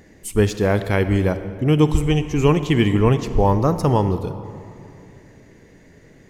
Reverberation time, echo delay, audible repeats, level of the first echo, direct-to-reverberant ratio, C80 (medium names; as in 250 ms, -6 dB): 2.7 s, no echo, no echo, no echo, 11.0 dB, 12.0 dB